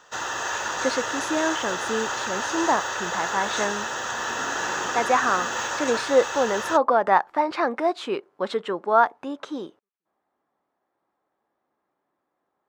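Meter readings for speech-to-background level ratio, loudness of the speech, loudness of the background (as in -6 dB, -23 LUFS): 2.5 dB, -25.0 LUFS, -27.5 LUFS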